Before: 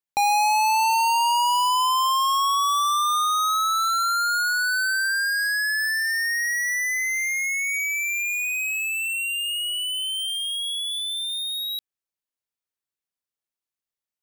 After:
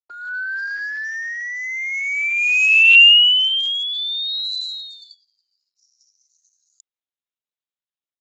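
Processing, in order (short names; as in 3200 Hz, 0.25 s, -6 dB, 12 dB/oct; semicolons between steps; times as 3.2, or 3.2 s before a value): low shelf 390 Hz -5.5 dB; AGC gain up to 16.5 dB; band-pass sweep 230 Hz -> 5500 Hz, 2.74–6.73; speed mistake 45 rpm record played at 78 rpm; gain +1 dB; Speex 13 kbps 16000 Hz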